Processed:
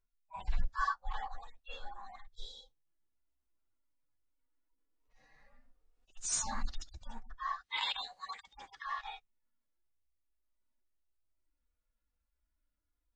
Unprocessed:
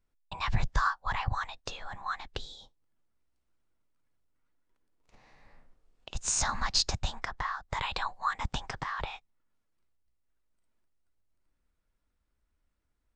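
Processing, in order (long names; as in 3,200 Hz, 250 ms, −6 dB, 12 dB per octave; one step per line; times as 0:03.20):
harmonic-percussive split with one part muted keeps harmonic
0:07.61–0:08.84: meter weighting curve D
noise reduction from a noise print of the clip's start 6 dB
level +1 dB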